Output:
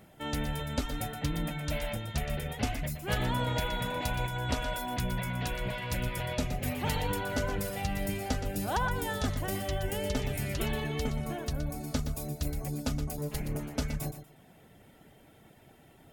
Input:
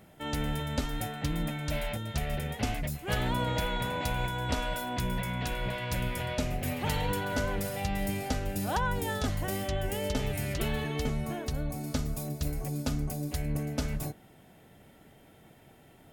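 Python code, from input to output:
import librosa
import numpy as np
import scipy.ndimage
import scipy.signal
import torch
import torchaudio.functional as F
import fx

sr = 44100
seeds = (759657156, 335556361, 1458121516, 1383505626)

y = fx.lower_of_two(x, sr, delay_ms=4.8, at=(13.17, 13.76))
y = fx.dereverb_blind(y, sr, rt60_s=0.51)
y = fx.echo_feedback(y, sr, ms=120, feedback_pct=21, wet_db=-10.0)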